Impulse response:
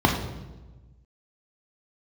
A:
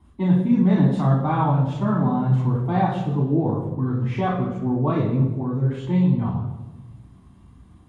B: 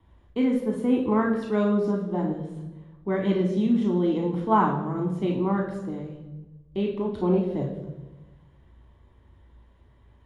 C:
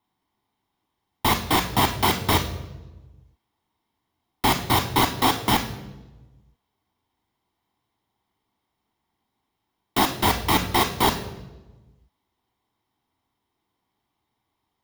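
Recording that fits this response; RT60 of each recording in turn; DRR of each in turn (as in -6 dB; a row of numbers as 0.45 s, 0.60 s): B; 1.2 s, 1.2 s, 1.2 s; -3.0 dB, 1.5 dB, 8.0 dB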